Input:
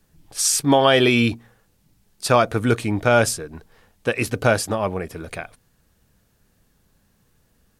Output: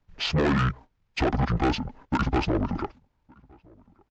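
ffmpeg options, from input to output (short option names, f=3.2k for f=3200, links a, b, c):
-filter_complex "[0:a]lowpass=2.6k,aemphasis=mode=production:type=75fm,agate=range=-13dB:threshold=-55dB:ratio=16:detection=peak,atempo=1.9,acrossover=split=810|2000[a][b][c];[a]acompressor=threshold=-22dB:ratio=4[d];[b]acompressor=threshold=-23dB:ratio=4[e];[c]acompressor=threshold=-30dB:ratio=4[f];[d][e][f]amix=inputs=3:normalize=0,asetrate=24046,aresample=44100,atempo=1.83401,aresample=16000,asoftclip=type=tanh:threshold=-25dB,aresample=44100,asplit=2[g][h];[h]adelay=1166,volume=-28dB,highshelf=f=4k:g=-26.2[i];[g][i]amix=inputs=2:normalize=0,volume=6dB" -ar 48000 -c:a aac -b:a 64k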